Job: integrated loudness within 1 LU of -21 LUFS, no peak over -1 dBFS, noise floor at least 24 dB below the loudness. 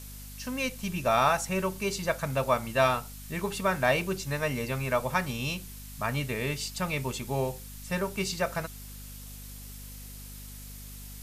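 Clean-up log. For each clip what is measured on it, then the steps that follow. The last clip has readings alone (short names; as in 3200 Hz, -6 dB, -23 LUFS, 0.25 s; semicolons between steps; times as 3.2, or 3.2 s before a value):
hum 50 Hz; harmonics up to 250 Hz; hum level -43 dBFS; noise floor -44 dBFS; noise floor target -54 dBFS; loudness -29.5 LUFS; peak -11.5 dBFS; loudness target -21.0 LUFS
-> notches 50/100/150/200/250 Hz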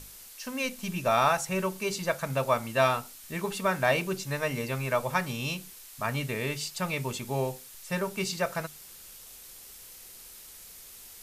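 hum none; noise floor -49 dBFS; noise floor target -54 dBFS
-> noise print and reduce 6 dB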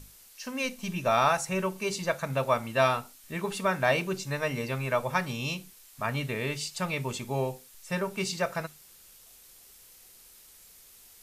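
noise floor -55 dBFS; loudness -30.0 LUFS; peak -11.5 dBFS; loudness target -21.0 LUFS
-> gain +9 dB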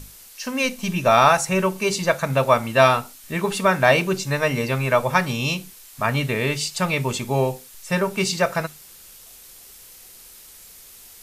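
loudness -21.0 LUFS; peak -2.5 dBFS; noise floor -46 dBFS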